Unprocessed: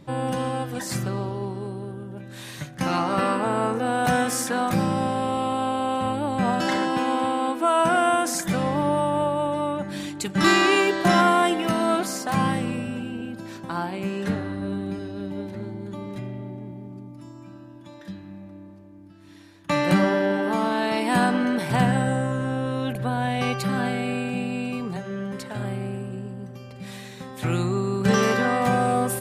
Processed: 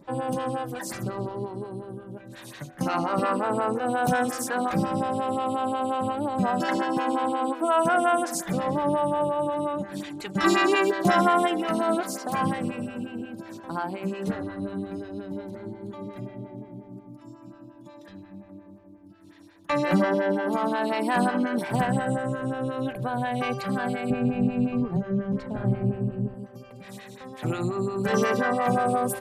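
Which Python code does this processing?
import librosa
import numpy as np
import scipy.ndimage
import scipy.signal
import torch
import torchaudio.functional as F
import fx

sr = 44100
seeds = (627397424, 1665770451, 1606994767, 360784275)

y = fx.riaa(x, sr, side='playback', at=(24.1, 26.34))
y = fx.stagger_phaser(y, sr, hz=5.6)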